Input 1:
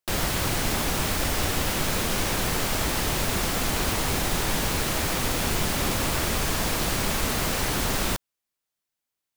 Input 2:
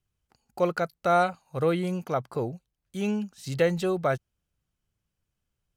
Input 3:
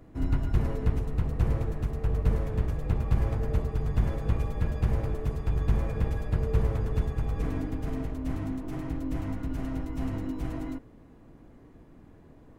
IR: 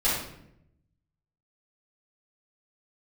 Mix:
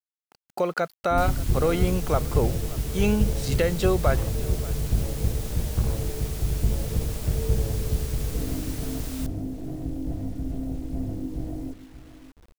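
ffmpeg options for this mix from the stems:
-filter_complex "[0:a]highshelf=f=3.8k:g=11,adelay=1100,volume=-19.5dB[a];[1:a]highpass=f=190:p=1,alimiter=limit=-20.5dB:level=0:latency=1:release=268,acontrast=57,volume=0.5dB,asplit=2[b][c];[c]volume=-19.5dB[d];[2:a]afwtdn=0.0178,adelay=950,volume=1.5dB,asplit=2[e][f];[f]volume=-14.5dB[g];[d][g]amix=inputs=2:normalize=0,aecho=0:1:583:1[h];[a][b][e][h]amix=inputs=4:normalize=0,acrusher=bits=8:mix=0:aa=0.000001"

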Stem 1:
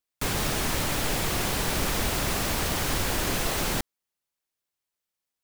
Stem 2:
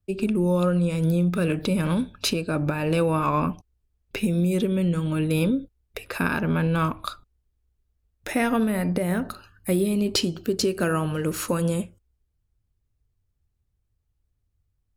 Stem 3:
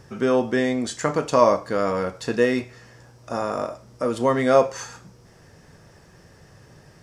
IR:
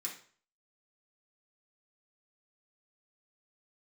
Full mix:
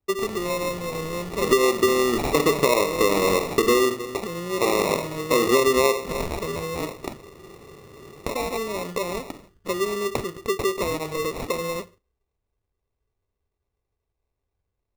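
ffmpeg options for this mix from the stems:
-filter_complex "[0:a]asoftclip=type=hard:threshold=-27.5dB,volume=-9.5dB[a];[1:a]acompressor=threshold=-25dB:ratio=6,lowshelf=f=390:t=q:w=1.5:g=-8.5,volume=0.5dB,asplit=2[b][c];[c]volume=-23.5dB[d];[2:a]equalizer=f=370:t=o:w=0.77:g=3.5,adelay=1300,volume=0dB,asplit=3[e][f][g];[f]volume=-5.5dB[h];[g]volume=-23dB[i];[3:a]atrim=start_sample=2205[j];[d][h]amix=inputs=2:normalize=0[k];[k][j]afir=irnorm=-1:irlink=0[l];[i]aecho=0:1:306:1[m];[a][b][e][l][m]amix=inputs=5:normalize=0,equalizer=f=400:t=o:w=0.52:g=12,acrusher=samples=28:mix=1:aa=0.000001,acompressor=threshold=-15dB:ratio=16"

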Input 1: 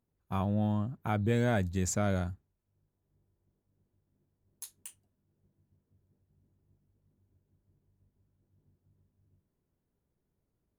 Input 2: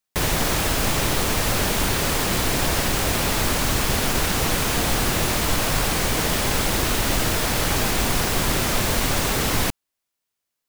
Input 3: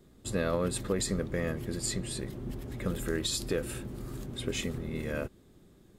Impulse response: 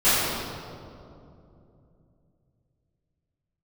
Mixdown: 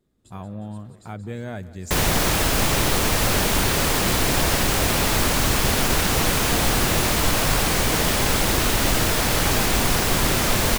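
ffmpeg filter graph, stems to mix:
-filter_complex "[0:a]volume=-4dB,asplit=2[a][b];[b]volume=-18dB[c];[1:a]adelay=1750,volume=1.5dB[d];[2:a]acompressor=threshold=-39dB:ratio=5,volume=-12.5dB,asplit=2[e][f];[f]volume=-6dB[g];[c][g]amix=inputs=2:normalize=0,aecho=0:1:179|358|537|716|895|1074|1253|1432:1|0.56|0.314|0.176|0.0983|0.0551|0.0308|0.0173[h];[a][d][e][h]amix=inputs=4:normalize=0"

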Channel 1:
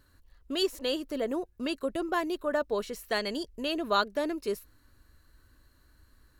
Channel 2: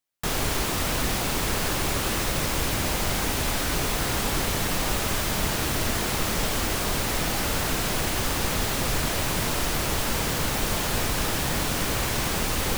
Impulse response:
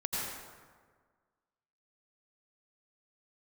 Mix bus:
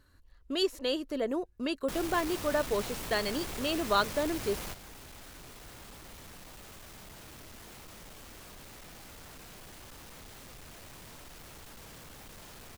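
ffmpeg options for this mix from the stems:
-filter_complex "[0:a]highshelf=f=11k:g=-7.5,volume=-0.5dB,asplit=2[a][b];[1:a]asoftclip=type=tanh:threshold=-30dB,adelay=1650,volume=-7dB[c];[b]apad=whole_len=636095[d];[c][d]sidechaingate=range=-10dB:threshold=-53dB:ratio=16:detection=peak[e];[a][e]amix=inputs=2:normalize=0"

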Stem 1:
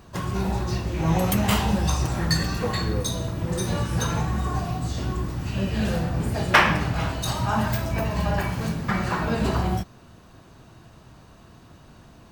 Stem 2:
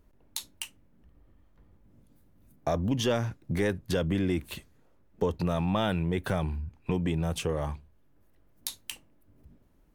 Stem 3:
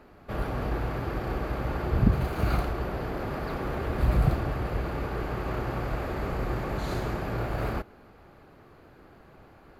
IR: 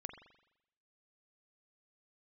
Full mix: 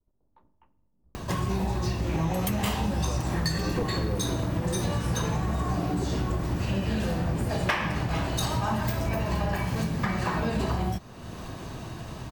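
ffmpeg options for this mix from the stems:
-filter_complex "[0:a]acompressor=mode=upward:threshold=-31dB:ratio=2.5,bandreject=f=1.4k:w=10,adelay=1150,volume=3dB[a];[1:a]lowpass=f=1.1k:w=0.5412,lowpass=f=1.1k:w=1.3066,agate=range=-33dB:threshold=-54dB:ratio=3:detection=peak,volume=-7dB,asplit=2[b][c];[c]volume=-4dB[d];[2:a]aeval=exprs='val(0)*sin(2*PI*240*n/s)':c=same,adelay=1750,volume=0dB[e];[3:a]atrim=start_sample=2205[f];[d][f]afir=irnorm=-1:irlink=0[g];[a][b][e][g]amix=inputs=4:normalize=0,acompressor=threshold=-24dB:ratio=6"

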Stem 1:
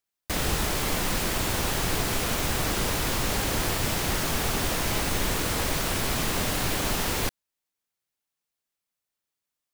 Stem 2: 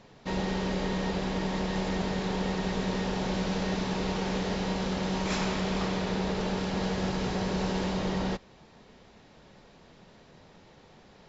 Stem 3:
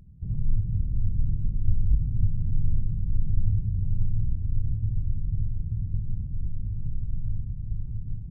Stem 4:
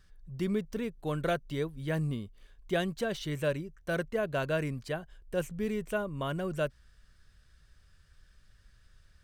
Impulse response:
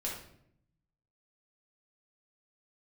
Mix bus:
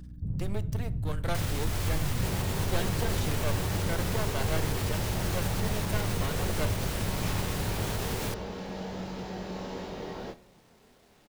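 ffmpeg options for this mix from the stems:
-filter_complex "[0:a]alimiter=limit=-22.5dB:level=0:latency=1:release=190,adelay=1050,volume=-3dB[a];[1:a]equalizer=f=460:t=o:w=2.4:g=3.5,acrusher=bits=8:mix=0:aa=0.000001,flanger=delay=22.5:depth=2.3:speed=0.28,adelay=1950,volume=-7dB,asplit=2[b][c];[c]volume=-14.5dB[d];[2:a]highpass=f=140:p=1,acompressor=threshold=-34dB:ratio=6,aeval=exprs='val(0)+0.00355*(sin(2*PI*60*n/s)+sin(2*PI*2*60*n/s)/2+sin(2*PI*3*60*n/s)/3+sin(2*PI*4*60*n/s)/4+sin(2*PI*5*60*n/s)/5)':c=same,volume=2.5dB,asplit=2[e][f];[f]volume=-5.5dB[g];[3:a]highshelf=f=4.2k:g=8.5,aeval=exprs='max(val(0),0)':c=same,volume=-1dB,asplit=2[h][i];[i]volume=-15dB[j];[4:a]atrim=start_sample=2205[k];[d][g][j]amix=inputs=3:normalize=0[l];[l][k]afir=irnorm=-1:irlink=0[m];[a][b][e][h][m]amix=inputs=5:normalize=0"

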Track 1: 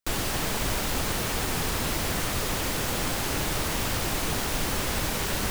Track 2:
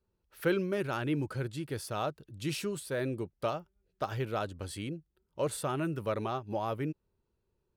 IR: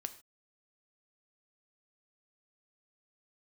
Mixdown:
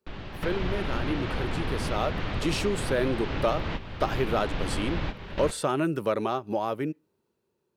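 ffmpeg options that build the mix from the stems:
-filter_complex "[0:a]lowpass=f=3.6k:w=0.5412,lowpass=f=3.6k:w=1.3066,volume=-1dB,asplit=2[a][b];[b]volume=-9dB[c];[1:a]acrossover=split=8700[d][e];[e]acompressor=threshold=-59dB:ratio=4:attack=1:release=60[f];[d][f]amix=inputs=2:normalize=0,highpass=230,dynaudnorm=f=430:g=9:m=10.5dB,volume=2.5dB,asplit=3[g][h][i];[h]volume=-18.5dB[j];[i]apad=whole_len=242870[k];[a][k]sidechaingate=range=-33dB:threshold=-46dB:ratio=16:detection=peak[l];[2:a]atrim=start_sample=2205[m];[c][j]amix=inputs=2:normalize=0[n];[n][m]afir=irnorm=-1:irlink=0[o];[l][g][o]amix=inputs=3:normalize=0,lowshelf=f=280:g=5.5,acompressor=threshold=-34dB:ratio=1.5"

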